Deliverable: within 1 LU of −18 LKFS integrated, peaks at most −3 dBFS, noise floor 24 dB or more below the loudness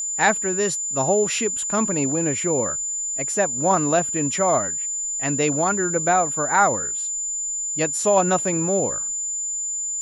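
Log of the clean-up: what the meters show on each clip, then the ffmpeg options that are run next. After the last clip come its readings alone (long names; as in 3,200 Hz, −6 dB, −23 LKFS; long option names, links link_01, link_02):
interfering tone 7,100 Hz; level of the tone −24 dBFS; integrated loudness −21.0 LKFS; sample peak −5.5 dBFS; target loudness −18.0 LKFS
→ -af "bandreject=frequency=7100:width=30"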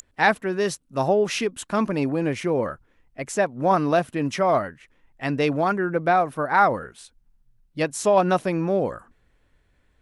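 interfering tone none found; integrated loudness −23.0 LKFS; sample peak −6.0 dBFS; target loudness −18.0 LKFS
→ -af "volume=5dB,alimiter=limit=-3dB:level=0:latency=1"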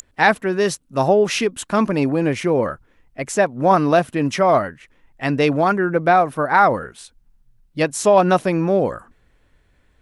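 integrated loudness −18.0 LKFS; sample peak −3.0 dBFS; background noise floor −59 dBFS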